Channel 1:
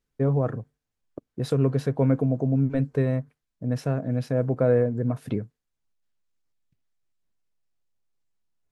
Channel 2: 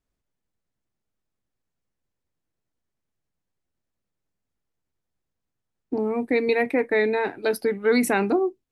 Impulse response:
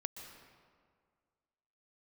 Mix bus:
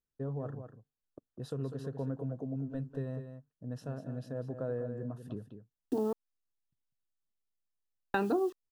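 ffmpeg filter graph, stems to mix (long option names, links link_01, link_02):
-filter_complex "[0:a]volume=-13.5dB,asplit=2[link_01][link_02];[link_02]volume=-9.5dB[link_03];[1:a]acrusher=bits=7:mix=0:aa=0.000001,volume=0dB,asplit=3[link_04][link_05][link_06];[link_04]atrim=end=6.13,asetpts=PTS-STARTPTS,afade=type=out:start_time=6.126:duration=0.004:curve=hsin[link_07];[link_05]atrim=start=6.13:end=8.14,asetpts=PTS-STARTPTS,volume=0[link_08];[link_06]atrim=start=8.14,asetpts=PTS-STARTPTS,afade=type=in:duration=0.004:curve=hsin[link_09];[link_07][link_08][link_09]concat=n=3:v=0:a=1[link_10];[link_03]aecho=0:1:198:1[link_11];[link_01][link_10][link_11]amix=inputs=3:normalize=0,asuperstop=centerf=2200:order=4:qfactor=2.9,acompressor=threshold=-33dB:ratio=2"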